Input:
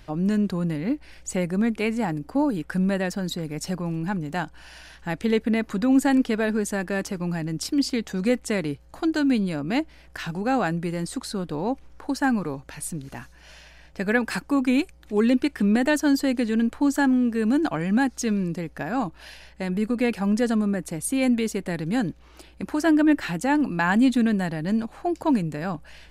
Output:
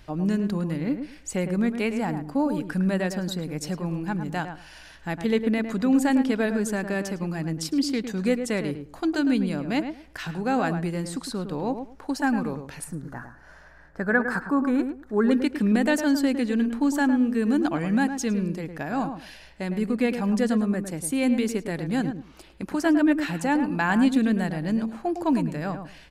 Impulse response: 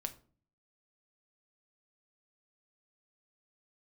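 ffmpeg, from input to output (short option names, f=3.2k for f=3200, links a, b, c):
-filter_complex "[0:a]asettb=1/sr,asplit=3[a][b][c];[a]atrim=end=12.844[d];[b]atrim=start=12.84:end=15.31,asetpts=PTS-STARTPTS,afade=t=in:d=0.004:c=qsin,afade=t=out:st=2.466:d=0.004:c=qsin,highshelf=f=2k:t=q:w=3:g=-9.5[e];[c]atrim=start=15.306[f];[d][e]acrossfade=d=0.004:c1=hsin:c2=qsin[g];[g][f]acrossfade=d=0.004:c1=qsin:c2=hsin,asplit=2[h][i];[i]adelay=107,lowpass=f=1.6k:p=1,volume=-7.5dB,asplit=2[j][k];[k]adelay=107,lowpass=f=1.6k:p=1,volume=0.19,asplit=2[l][m];[m]adelay=107,lowpass=f=1.6k:p=1,volume=0.19[n];[h][j][l][n]amix=inputs=4:normalize=0,volume=-1.5dB"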